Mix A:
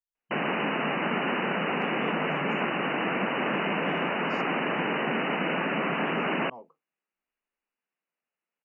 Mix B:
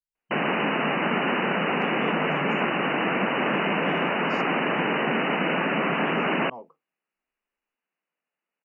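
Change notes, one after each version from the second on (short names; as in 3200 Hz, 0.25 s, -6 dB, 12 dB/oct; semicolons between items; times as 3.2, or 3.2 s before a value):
speech +4.5 dB; background +3.5 dB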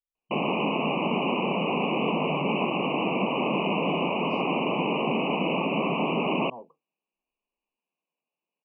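speech: add air absorption 280 m; master: add Chebyshev band-stop 1100–2400 Hz, order 3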